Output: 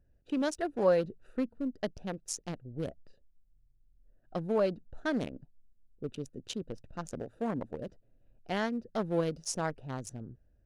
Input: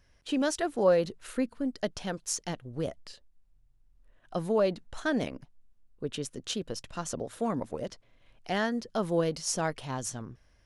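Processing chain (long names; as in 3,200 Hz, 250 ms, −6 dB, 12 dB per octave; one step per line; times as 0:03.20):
adaptive Wiener filter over 41 samples
level −2 dB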